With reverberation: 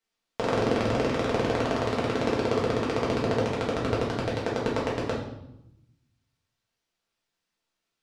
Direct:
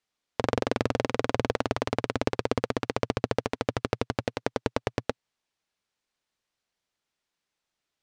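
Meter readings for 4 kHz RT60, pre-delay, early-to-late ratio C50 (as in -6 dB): 0.70 s, 4 ms, 4.0 dB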